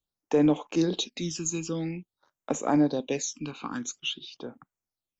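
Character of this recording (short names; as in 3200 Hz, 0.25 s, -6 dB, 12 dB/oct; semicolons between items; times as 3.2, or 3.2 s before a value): phasing stages 12, 0.49 Hz, lowest notch 590–4600 Hz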